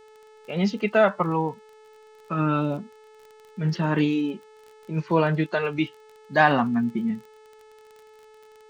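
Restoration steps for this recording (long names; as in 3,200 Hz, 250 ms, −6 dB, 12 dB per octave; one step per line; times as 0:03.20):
click removal
hum removal 432.8 Hz, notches 22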